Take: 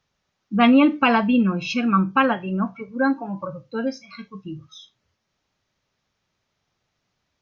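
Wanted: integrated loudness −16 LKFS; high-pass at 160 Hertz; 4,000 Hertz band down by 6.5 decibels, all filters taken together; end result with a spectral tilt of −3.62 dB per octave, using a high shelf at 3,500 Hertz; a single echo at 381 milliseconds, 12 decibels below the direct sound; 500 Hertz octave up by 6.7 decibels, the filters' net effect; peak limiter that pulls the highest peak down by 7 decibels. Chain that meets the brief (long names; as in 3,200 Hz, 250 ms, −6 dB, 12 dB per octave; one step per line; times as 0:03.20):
high-pass filter 160 Hz
parametric band 500 Hz +8 dB
high-shelf EQ 3,500 Hz −5.5 dB
parametric band 4,000 Hz −6.5 dB
brickwall limiter −10 dBFS
single-tap delay 381 ms −12 dB
level +5 dB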